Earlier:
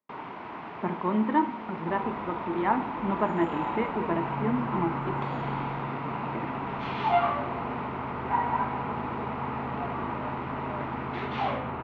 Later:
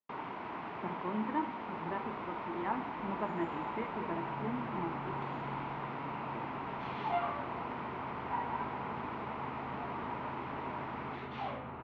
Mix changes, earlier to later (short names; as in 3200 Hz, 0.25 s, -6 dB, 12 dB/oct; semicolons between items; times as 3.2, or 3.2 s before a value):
speech -10.5 dB; first sound: send off; second sound -10.5 dB